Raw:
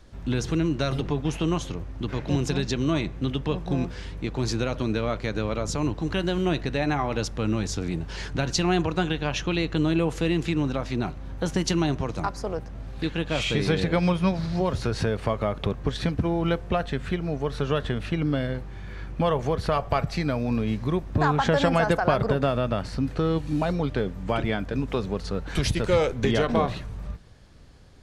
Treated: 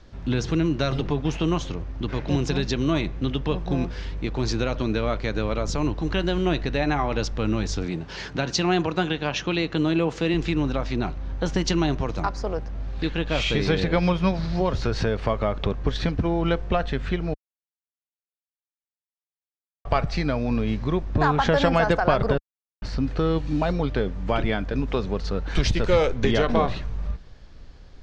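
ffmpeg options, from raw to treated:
-filter_complex "[0:a]asettb=1/sr,asplit=3[s0][s1][s2];[s0]atrim=end=7.864[s3];[s1]atrim=start=7.86:end=10.34,asetpts=PTS-STARTPTS,afade=t=in:d=0.004:c=qsin,afade=t=out:st=2.476:d=0.004:c=qsin,highpass=120[s4];[s2]atrim=start=10.336[s5];[s3][s4]acrossfade=d=0.004:c1=hsin:c2=qsin[s6];[s6][s5]acrossfade=d=0.004:c1=qsin:c2=hsin,asplit=5[s7][s8][s9][s10][s11];[s7]atrim=end=17.34,asetpts=PTS-STARTPTS,afade=t=out:st=17.336:d=0.004:c=hsin[s12];[s8]atrim=start=17.34:end=19.85,asetpts=PTS-STARTPTS,volume=0[s13];[s9]atrim=start=19.85:end=22.38,asetpts=PTS-STARTPTS,afade=t=in:d=0.004:c=hsin,afade=t=out:st=2.526:d=0.004:c=hsin[s14];[s10]atrim=start=22.38:end=22.82,asetpts=PTS-STARTPTS,volume=0[s15];[s11]atrim=start=22.82,asetpts=PTS-STARTPTS,afade=t=in:d=0.004:c=hsin[s16];[s12][s13][s14][s15][s16]concat=n=5:v=0:a=1,lowpass=f=6300:w=0.5412,lowpass=f=6300:w=1.3066,asubboost=boost=3:cutoff=52,volume=1.26"

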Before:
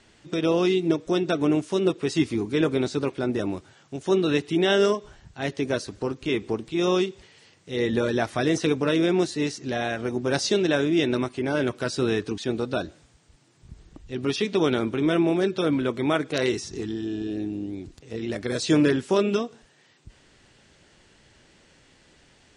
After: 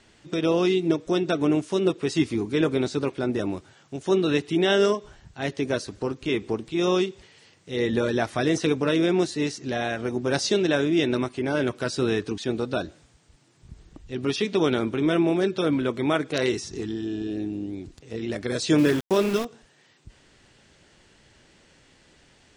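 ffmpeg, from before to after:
-filter_complex "[0:a]asettb=1/sr,asplit=3[s0][s1][s2];[s0]atrim=end=18.784[s3];[s1]atrim=start=18.78:end=19.45,asetpts=PTS-STARTPTS,afade=t=in:d=0.004:c=qsin,afade=t=out:st=0.666:d=0.004:c=qsin,aeval=exprs='val(0)*gte(abs(val(0)),0.0335)':c=same[s4];[s2]atrim=start=19.446[s5];[s3][s4]acrossfade=d=0.004:c1=hsin:c2=qsin[s6];[s6][s5]acrossfade=d=0.004:c1=qsin:c2=hsin"

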